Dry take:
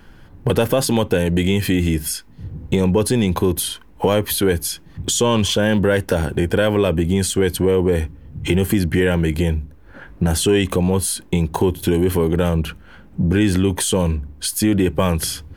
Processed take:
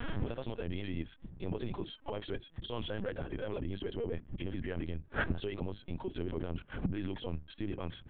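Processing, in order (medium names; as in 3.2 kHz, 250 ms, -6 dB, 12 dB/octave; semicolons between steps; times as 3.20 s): hum notches 50/100/150/200/250/300/350/400 Hz; peak limiter -12 dBFS, peak gain reduction 7 dB; time stretch by phase-locked vocoder 0.52×; inverted gate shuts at -30 dBFS, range -27 dB; LPC vocoder at 8 kHz pitch kept; trim +11 dB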